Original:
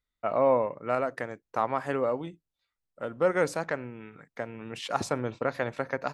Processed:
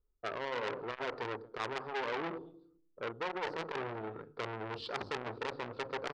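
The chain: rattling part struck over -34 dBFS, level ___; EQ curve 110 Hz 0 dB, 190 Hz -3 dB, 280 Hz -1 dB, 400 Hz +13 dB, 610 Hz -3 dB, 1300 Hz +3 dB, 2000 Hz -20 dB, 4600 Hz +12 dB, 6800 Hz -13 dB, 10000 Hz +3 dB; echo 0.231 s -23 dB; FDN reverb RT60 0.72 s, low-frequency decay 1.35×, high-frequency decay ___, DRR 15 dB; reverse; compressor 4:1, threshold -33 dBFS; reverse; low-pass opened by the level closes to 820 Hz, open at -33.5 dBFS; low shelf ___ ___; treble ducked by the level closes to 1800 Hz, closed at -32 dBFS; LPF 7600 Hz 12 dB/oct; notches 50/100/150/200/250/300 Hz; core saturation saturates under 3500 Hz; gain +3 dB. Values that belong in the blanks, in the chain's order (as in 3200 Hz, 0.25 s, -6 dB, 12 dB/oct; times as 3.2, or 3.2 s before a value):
-24 dBFS, 0.75×, 70 Hz, +12 dB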